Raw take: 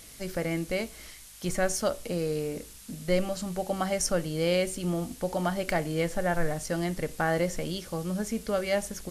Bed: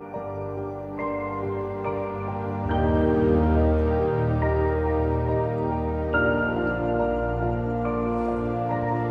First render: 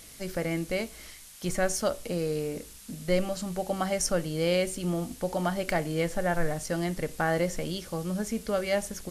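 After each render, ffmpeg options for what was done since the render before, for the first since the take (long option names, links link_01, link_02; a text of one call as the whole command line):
ffmpeg -i in.wav -af "bandreject=frequency=50:width_type=h:width=4,bandreject=frequency=100:width_type=h:width=4" out.wav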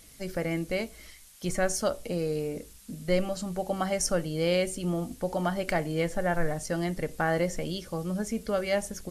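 ffmpeg -i in.wav -af "afftdn=noise_reduction=6:noise_floor=-48" out.wav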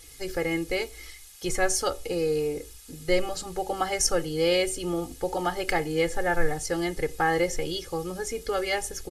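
ffmpeg -i in.wav -af "equalizer=frequency=4500:width=0.37:gain=3,aecho=1:1:2.4:0.93" out.wav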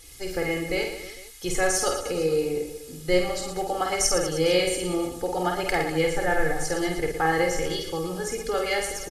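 ffmpeg -i in.wav -af "aecho=1:1:50|115|199.5|309.4|452.2:0.631|0.398|0.251|0.158|0.1" out.wav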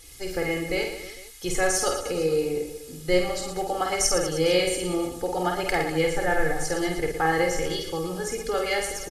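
ffmpeg -i in.wav -af anull out.wav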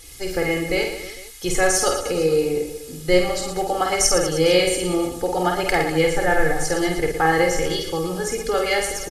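ffmpeg -i in.wav -af "volume=5dB" out.wav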